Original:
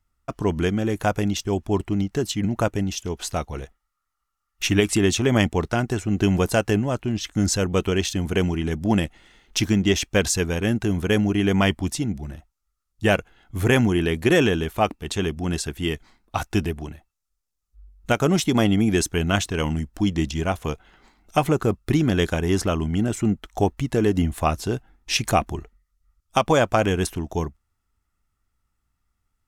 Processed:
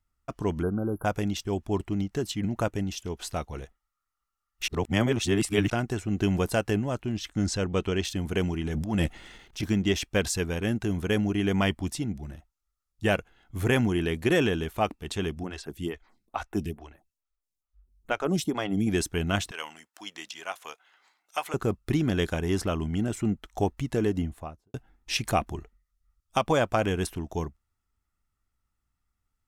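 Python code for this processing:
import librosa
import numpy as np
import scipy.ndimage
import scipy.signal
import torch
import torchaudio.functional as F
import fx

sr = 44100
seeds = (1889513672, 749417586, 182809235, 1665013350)

y = fx.spec_erase(x, sr, start_s=0.62, length_s=0.43, low_hz=1600.0, high_hz=10000.0)
y = fx.lowpass(y, sr, hz=7500.0, slope=12, at=(7.33, 8.04))
y = fx.transient(y, sr, attack_db=-11, sustain_db=11, at=(8.65, 9.63))
y = fx.stagger_phaser(y, sr, hz=2.3, at=(15.43, 18.87))
y = fx.highpass(y, sr, hz=920.0, slope=12, at=(19.51, 21.54))
y = fx.studio_fade_out(y, sr, start_s=23.96, length_s=0.78)
y = fx.edit(y, sr, fx.reverse_span(start_s=4.68, length_s=1.02), tone=tone)
y = fx.dynamic_eq(y, sr, hz=6500.0, q=4.3, threshold_db=-45.0, ratio=4.0, max_db=-4)
y = y * 10.0 ** (-5.5 / 20.0)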